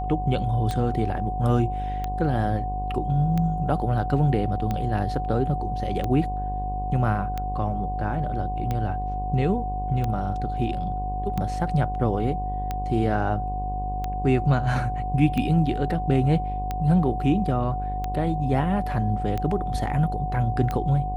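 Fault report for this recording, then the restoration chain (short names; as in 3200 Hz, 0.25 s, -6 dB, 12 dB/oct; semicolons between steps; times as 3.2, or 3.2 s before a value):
buzz 50 Hz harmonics 21 -30 dBFS
tick 45 rpm -15 dBFS
tone 740 Hz -29 dBFS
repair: de-click; de-hum 50 Hz, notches 21; notch 740 Hz, Q 30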